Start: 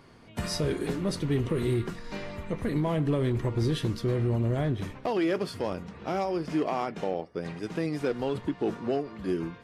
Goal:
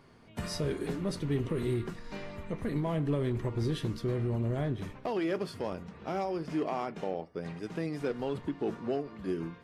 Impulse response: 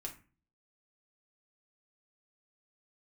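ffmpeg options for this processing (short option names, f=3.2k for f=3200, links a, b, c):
-filter_complex "[0:a]asplit=2[a][b];[b]lowpass=3.1k[c];[1:a]atrim=start_sample=2205[d];[c][d]afir=irnorm=-1:irlink=0,volume=-10.5dB[e];[a][e]amix=inputs=2:normalize=0,volume=-5.5dB"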